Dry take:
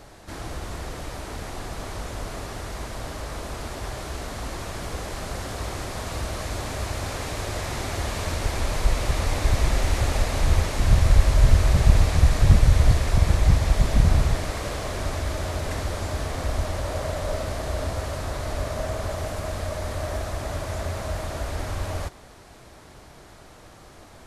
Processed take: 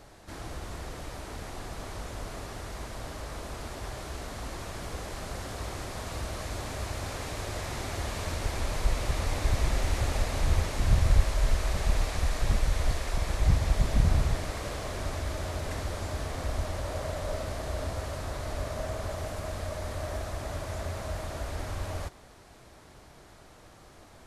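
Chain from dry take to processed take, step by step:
0:11.24–0:13.40: parametric band 110 Hz −10.5 dB 2.1 octaves
level −5.5 dB

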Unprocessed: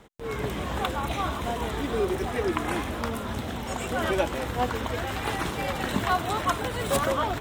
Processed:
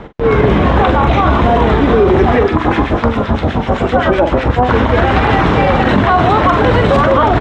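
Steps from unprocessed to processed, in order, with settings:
high-shelf EQ 3,200 Hz −10.5 dB
0:02.43–0:04.69: two-band tremolo in antiphase 7.8 Hz, depth 100%, crossover 1,400 Hz
high-frequency loss of the air 170 metres
double-tracking delay 44 ms −10.5 dB
delay with a high-pass on its return 777 ms, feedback 60%, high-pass 4,600 Hz, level −7 dB
boost into a limiter +24 dB
level −1 dB

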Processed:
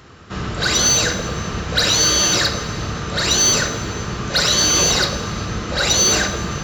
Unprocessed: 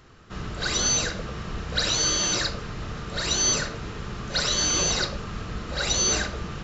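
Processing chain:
high-pass filter 59 Hz
in parallel at −5 dB: hard clipping −25 dBFS, distortion −9 dB
on the sum: dense smooth reverb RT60 2.6 s, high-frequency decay 0.85×, DRR 10.5 dB
level +5.5 dB

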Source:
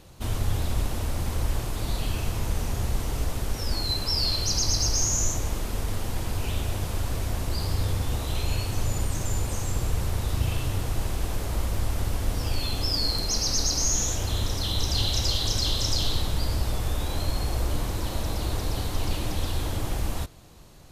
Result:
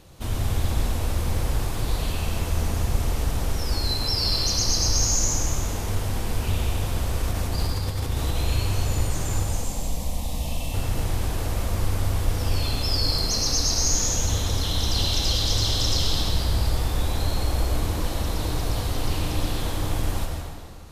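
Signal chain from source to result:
0:07.20–0:08.37: compressor whose output falls as the input rises −27 dBFS, ratio −0.5
0:09.44–0:10.74: phaser with its sweep stopped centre 390 Hz, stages 6
convolution reverb RT60 2.0 s, pre-delay 85 ms, DRR 0.5 dB

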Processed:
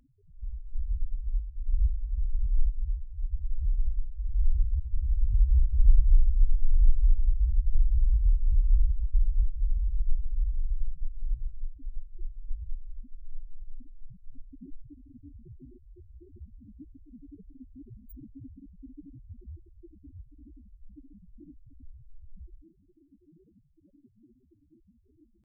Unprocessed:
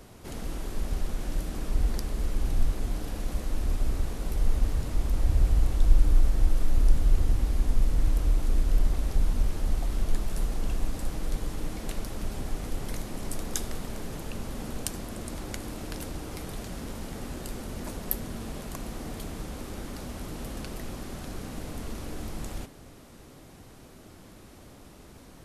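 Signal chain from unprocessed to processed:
spectral peaks only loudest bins 2
pitch shifter +3 semitones
noise reduction from a noise print of the clip's start 12 dB
level +2 dB

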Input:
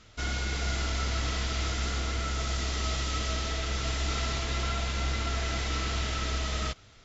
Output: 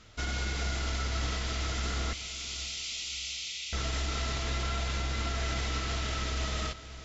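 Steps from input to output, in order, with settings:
0:02.13–0:03.73: Butterworth high-pass 2,200 Hz 72 dB per octave
brickwall limiter −23.5 dBFS, peak gain reduction 4.5 dB
feedback delay with all-pass diffusion 543 ms, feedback 45%, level −14 dB

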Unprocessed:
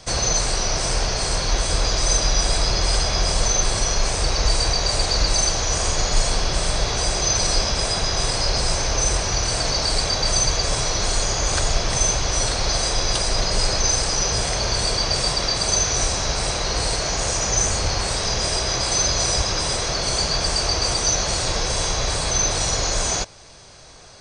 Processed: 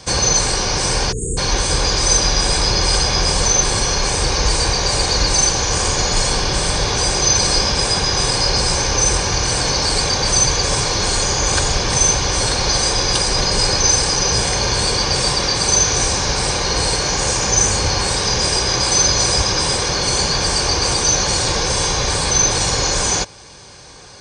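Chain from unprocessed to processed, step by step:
time-frequency box erased 0:01.12–0:01.37, 510–6,500 Hz
notch comb filter 660 Hz
level +6.5 dB

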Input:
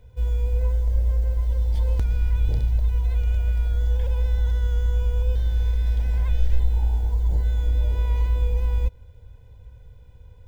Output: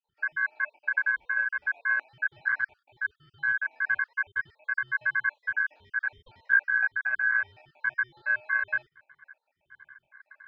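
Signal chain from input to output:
time-frequency cells dropped at random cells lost 64%
parametric band 430 Hz +6.5 dB 2.4 octaves
ring modulation 1,600 Hz
high-frequency loss of the air 370 metres

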